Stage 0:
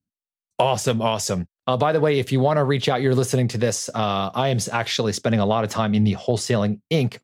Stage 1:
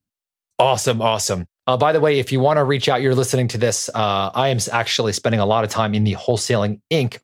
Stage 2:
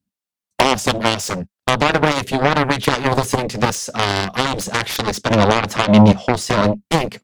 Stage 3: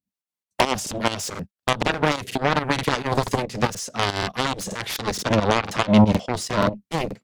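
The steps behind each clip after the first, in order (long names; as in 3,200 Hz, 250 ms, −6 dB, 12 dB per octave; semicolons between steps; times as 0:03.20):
parametric band 190 Hz −6 dB 1.3 octaves; level +4.5 dB
parametric band 200 Hz +12 dB 0.51 octaves; harmonic generator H 7 −11 dB, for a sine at −1 dBFS
fake sidechain pumping 139 BPM, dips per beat 2, −13 dB, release 170 ms; regular buffer underruns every 0.48 s, samples 2,048, repeat, from 0:00.34; level −4 dB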